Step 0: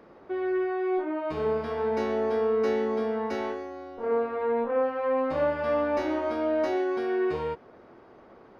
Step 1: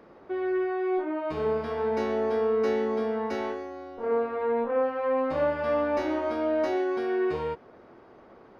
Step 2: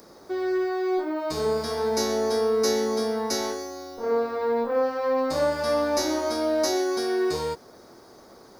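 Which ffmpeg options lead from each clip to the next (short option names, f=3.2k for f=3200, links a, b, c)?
-af anull
-af "aexciter=amount=8.3:drive=9.2:freq=4.3k,volume=2dB"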